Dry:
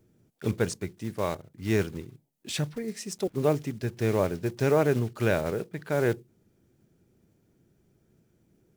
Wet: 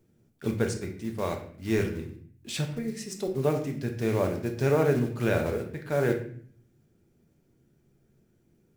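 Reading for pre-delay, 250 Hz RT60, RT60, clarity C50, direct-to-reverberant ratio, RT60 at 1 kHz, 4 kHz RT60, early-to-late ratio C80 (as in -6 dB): 4 ms, 0.80 s, 0.55 s, 8.5 dB, 3.0 dB, 0.50 s, 0.45 s, 12.0 dB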